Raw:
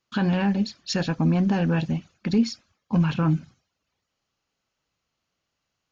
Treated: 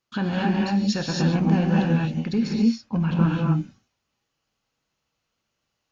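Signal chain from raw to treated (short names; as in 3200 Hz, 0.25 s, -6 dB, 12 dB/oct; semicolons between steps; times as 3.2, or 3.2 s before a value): 2.47–3.21 high shelf 3800 Hz -8 dB; non-linear reverb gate 0.3 s rising, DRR -2 dB; gain -2.5 dB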